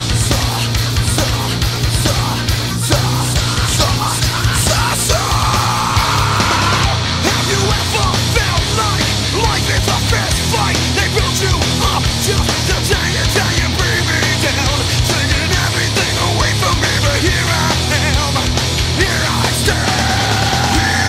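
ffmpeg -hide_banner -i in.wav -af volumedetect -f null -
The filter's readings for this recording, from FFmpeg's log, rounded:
mean_volume: -14.3 dB
max_volume: -1.3 dB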